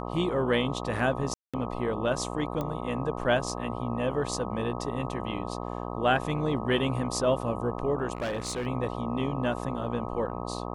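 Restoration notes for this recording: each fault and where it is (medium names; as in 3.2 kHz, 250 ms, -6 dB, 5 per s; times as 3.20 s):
buzz 60 Hz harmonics 21 -35 dBFS
1.34–1.54 s: dropout 196 ms
2.61 s: pop -19 dBFS
8.15–8.67 s: clipped -27.5 dBFS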